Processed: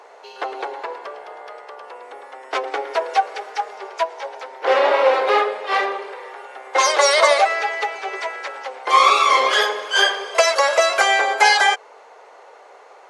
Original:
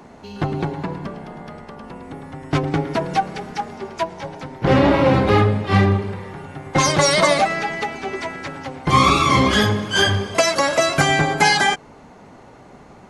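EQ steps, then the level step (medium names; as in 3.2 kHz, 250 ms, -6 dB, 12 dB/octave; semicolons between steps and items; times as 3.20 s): elliptic high-pass 450 Hz, stop band 70 dB; treble shelf 9.6 kHz -8 dB; +2.5 dB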